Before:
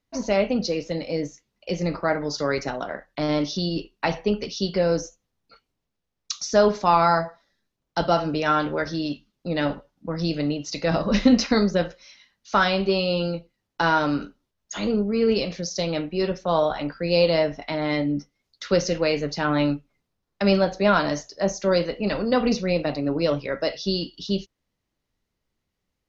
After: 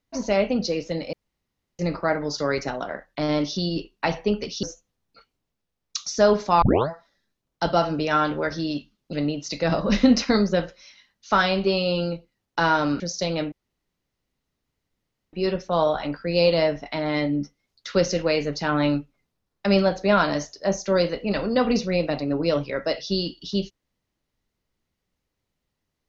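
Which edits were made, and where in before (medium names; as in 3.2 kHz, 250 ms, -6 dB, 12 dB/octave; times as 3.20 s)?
1.13–1.79 s: room tone
4.63–4.98 s: delete
6.97 s: tape start 0.27 s
9.48–10.35 s: delete
14.22–15.57 s: delete
16.09 s: insert room tone 1.81 s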